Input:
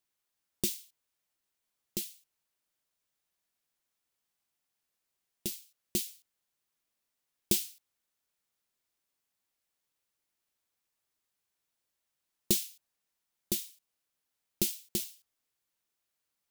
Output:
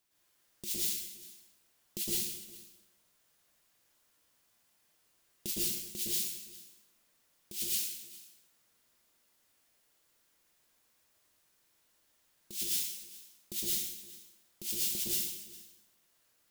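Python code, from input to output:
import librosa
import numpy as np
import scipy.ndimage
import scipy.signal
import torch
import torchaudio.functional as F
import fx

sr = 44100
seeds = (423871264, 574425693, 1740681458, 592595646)

p1 = fx.over_compress(x, sr, threshold_db=-38.0, ratio=-1.0)
p2 = p1 + fx.echo_single(p1, sr, ms=406, db=-19.5, dry=0)
y = fx.rev_plate(p2, sr, seeds[0], rt60_s=1.0, hf_ratio=0.8, predelay_ms=100, drr_db=-6.5)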